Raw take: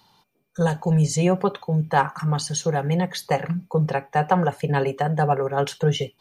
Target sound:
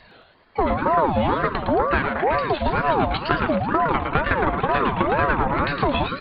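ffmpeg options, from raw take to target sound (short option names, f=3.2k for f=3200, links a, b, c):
-filter_complex "[0:a]acompressor=threshold=-28dB:ratio=10,asplit=2[a][b];[b]adelay=379,volume=-11dB,highshelf=f=4k:g=-8.53[c];[a][c]amix=inputs=2:normalize=0,aresample=8000,aeval=exprs='clip(val(0),-1,0.0447)':c=same,aresample=44100,acontrast=89,asplit=2[d][e];[e]asplit=4[f][g][h][i];[f]adelay=111,afreqshift=150,volume=-4.5dB[j];[g]adelay=222,afreqshift=300,volume=-14.4dB[k];[h]adelay=333,afreqshift=450,volume=-24.3dB[l];[i]adelay=444,afreqshift=600,volume=-34.2dB[m];[j][k][l][m]amix=inputs=4:normalize=0[n];[d][n]amix=inputs=2:normalize=0,aeval=exprs='val(0)*sin(2*PI*620*n/s+620*0.4/2.1*sin(2*PI*2.1*n/s))':c=same,volume=6dB"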